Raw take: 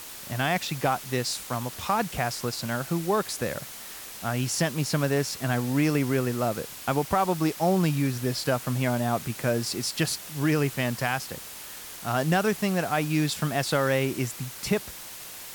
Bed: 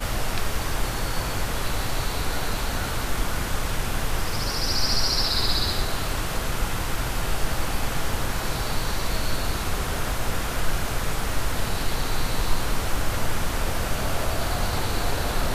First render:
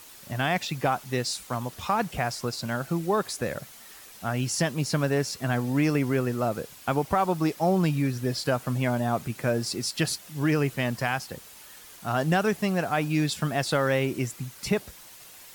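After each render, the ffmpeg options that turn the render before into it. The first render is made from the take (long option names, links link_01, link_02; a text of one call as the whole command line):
ffmpeg -i in.wav -af "afftdn=noise_reduction=8:noise_floor=-41" out.wav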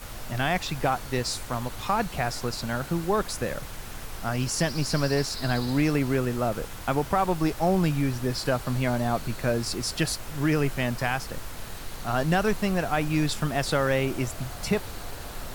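ffmpeg -i in.wav -i bed.wav -filter_complex "[1:a]volume=-13dB[link_01];[0:a][link_01]amix=inputs=2:normalize=0" out.wav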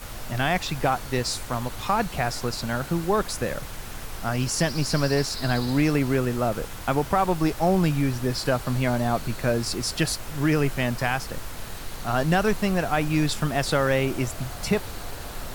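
ffmpeg -i in.wav -af "volume=2dB" out.wav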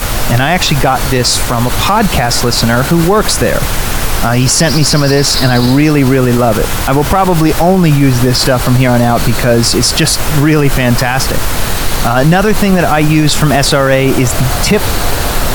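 ffmpeg -i in.wav -af "acontrast=82,alimiter=level_in=15.5dB:limit=-1dB:release=50:level=0:latency=1" out.wav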